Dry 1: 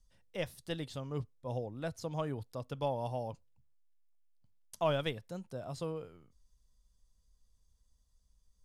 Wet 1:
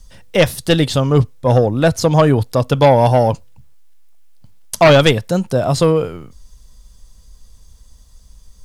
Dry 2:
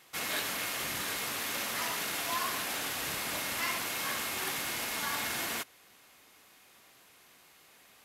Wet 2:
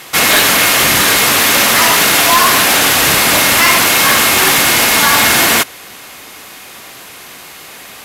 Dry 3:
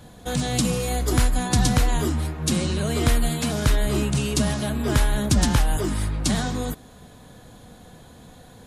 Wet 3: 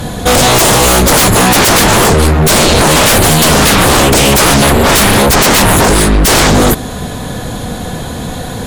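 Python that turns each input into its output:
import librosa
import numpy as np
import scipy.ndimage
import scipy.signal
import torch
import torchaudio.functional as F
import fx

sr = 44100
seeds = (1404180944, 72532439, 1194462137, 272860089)

y = fx.fold_sine(x, sr, drive_db=18, ceiling_db=-8.5)
y = F.gain(torch.from_numpy(y), 4.5).numpy()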